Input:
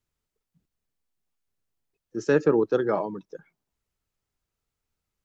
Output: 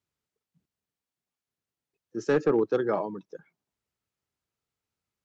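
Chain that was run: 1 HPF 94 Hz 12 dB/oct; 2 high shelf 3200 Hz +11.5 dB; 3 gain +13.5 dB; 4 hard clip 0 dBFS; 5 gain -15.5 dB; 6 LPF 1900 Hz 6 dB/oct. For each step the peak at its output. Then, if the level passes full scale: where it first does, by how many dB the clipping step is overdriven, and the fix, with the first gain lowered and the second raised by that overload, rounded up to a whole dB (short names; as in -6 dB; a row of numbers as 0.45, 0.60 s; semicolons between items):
-9.0, -8.5, +5.0, 0.0, -15.5, -15.5 dBFS; step 3, 5.0 dB; step 3 +8.5 dB, step 5 -10.5 dB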